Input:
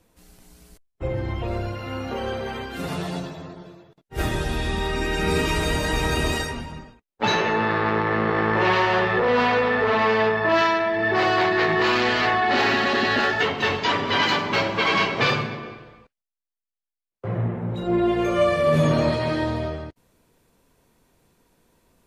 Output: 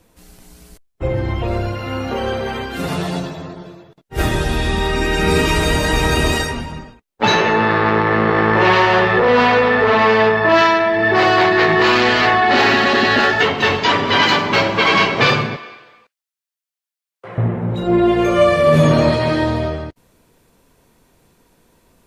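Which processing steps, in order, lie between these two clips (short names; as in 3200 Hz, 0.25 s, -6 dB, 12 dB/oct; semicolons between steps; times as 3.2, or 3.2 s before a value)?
15.56–17.38 HPF 1400 Hz 6 dB/oct; gain +7 dB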